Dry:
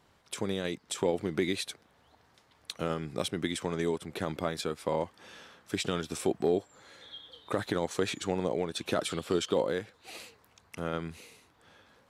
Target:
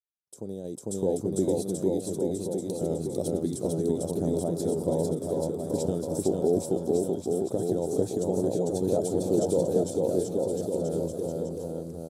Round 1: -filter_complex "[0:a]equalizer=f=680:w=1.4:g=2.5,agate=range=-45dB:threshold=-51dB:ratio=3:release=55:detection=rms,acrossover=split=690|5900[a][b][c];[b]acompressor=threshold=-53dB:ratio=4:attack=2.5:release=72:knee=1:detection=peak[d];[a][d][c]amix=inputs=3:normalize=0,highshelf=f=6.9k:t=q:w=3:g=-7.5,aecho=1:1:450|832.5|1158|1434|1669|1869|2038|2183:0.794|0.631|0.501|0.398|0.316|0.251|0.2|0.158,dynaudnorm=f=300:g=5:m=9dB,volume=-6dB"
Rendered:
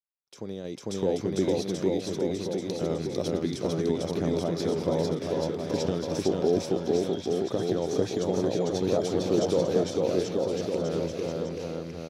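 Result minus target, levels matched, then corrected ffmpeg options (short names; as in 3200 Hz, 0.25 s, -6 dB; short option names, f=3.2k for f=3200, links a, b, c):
2000 Hz band +17.0 dB; 8000 Hz band -3.0 dB
-filter_complex "[0:a]equalizer=f=680:w=1.4:g=2.5,agate=range=-45dB:threshold=-51dB:ratio=3:release=55:detection=rms,acrossover=split=690|5900[a][b][c];[b]acompressor=threshold=-53dB:ratio=4:attack=2.5:release=72:knee=1:detection=peak,asuperstop=centerf=2800:order=8:qfactor=0.52[d];[a][d][c]amix=inputs=3:normalize=0,aecho=1:1:450|832.5|1158|1434|1669|1869|2038|2183:0.794|0.631|0.501|0.398|0.316|0.251|0.2|0.158,dynaudnorm=f=300:g=5:m=9dB,volume=-6dB"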